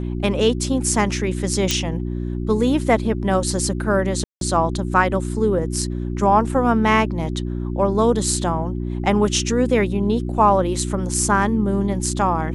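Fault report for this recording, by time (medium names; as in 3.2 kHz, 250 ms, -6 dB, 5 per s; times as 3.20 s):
hum 60 Hz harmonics 6 -25 dBFS
1.71 s: pop -4 dBFS
4.24–4.41 s: dropout 172 ms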